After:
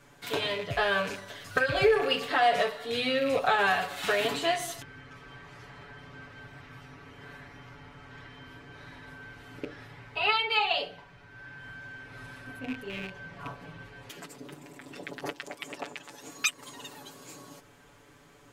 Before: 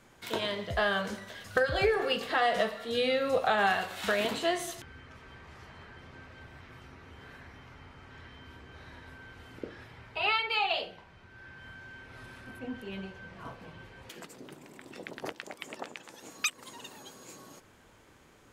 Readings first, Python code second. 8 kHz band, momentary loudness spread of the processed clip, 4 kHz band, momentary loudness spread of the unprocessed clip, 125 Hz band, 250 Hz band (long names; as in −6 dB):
+2.5 dB, 23 LU, +3.0 dB, 23 LU, +1.5 dB, +1.0 dB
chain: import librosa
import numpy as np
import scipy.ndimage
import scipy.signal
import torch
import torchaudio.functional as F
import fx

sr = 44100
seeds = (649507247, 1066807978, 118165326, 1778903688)

y = fx.rattle_buzz(x, sr, strikes_db=-42.0, level_db=-29.0)
y = y + 0.89 * np.pad(y, (int(7.0 * sr / 1000.0), 0))[:len(y)]